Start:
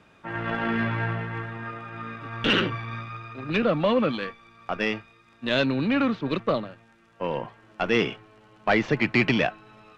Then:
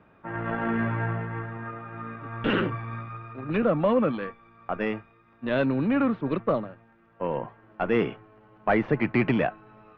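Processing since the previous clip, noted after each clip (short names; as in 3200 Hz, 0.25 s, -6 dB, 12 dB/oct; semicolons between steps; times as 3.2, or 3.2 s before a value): LPF 1600 Hz 12 dB/oct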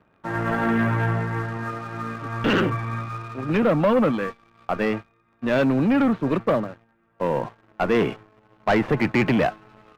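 sample leveller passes 2; gain -1 dB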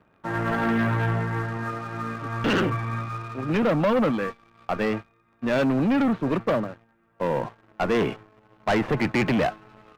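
soft clip -16.5 dBFS, distortion -18 dB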